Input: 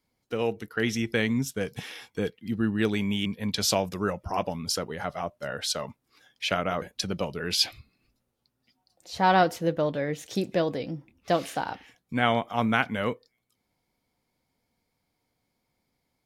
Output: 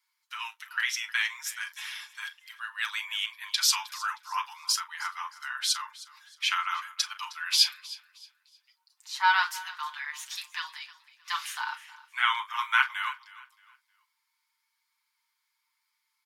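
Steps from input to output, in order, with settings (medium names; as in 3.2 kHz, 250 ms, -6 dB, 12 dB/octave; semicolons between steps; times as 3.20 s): steep high-pass 920 Hz 96 dB/octave; feedback delay 312 ms, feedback 31%, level -19 dB; on a send at -2.5 dB: reverberation, pre-delay 7 ms; on the sum: trim +1 dB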